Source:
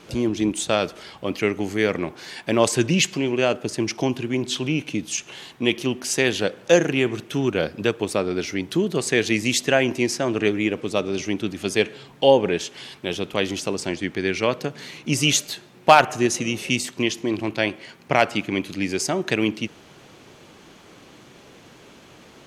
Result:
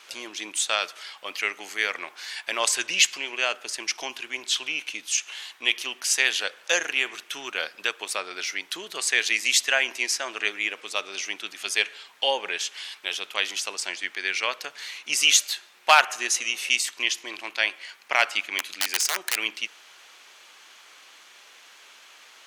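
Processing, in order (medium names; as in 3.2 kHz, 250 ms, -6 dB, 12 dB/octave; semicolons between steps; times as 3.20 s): 18.58–19.37 s: integer overflow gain 15.5 dB; high-pass 1.3 kHz 12 dB/octave; trim +2.5 dB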